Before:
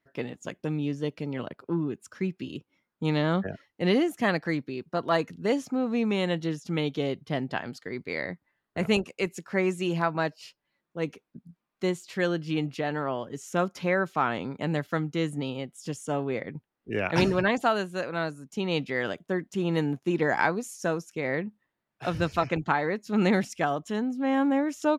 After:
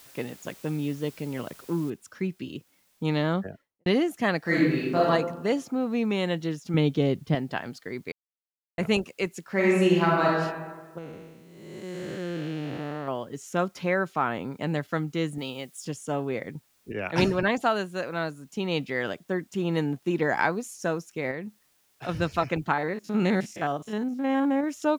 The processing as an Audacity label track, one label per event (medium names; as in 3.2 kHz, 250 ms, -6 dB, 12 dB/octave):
1.900000	1.900000	noise floor step -52 dB -67 dB
3.230000	3.860000	studio fade out
4.410000	5.060000	reverb throw, RT60 1.1 s, DRR -7.5 dB
6.740000	7.350000	bass shelf 340 Hz +10 dB
8.120000	8.780000	mute
9.510000	10.280000	reverb throw, RT60 1.4 s, DRR -3.5 dB
10.980000	13.080000	spectral blur width 460 ms
14.120000	14.540000	dynamic bell 4.5 kHz, up to -6 dB, over -47 dBFS, Q 1
15.380000	15.850000	tilt EQ +2 dB/octave
16.920000	17.430000	three bands expanded up and down depth 70%
21.310000	22.090000	compression 2:1, threshold -34 dBFS
22.730000	24.640000	spectrogram pixelated in time every 50 ms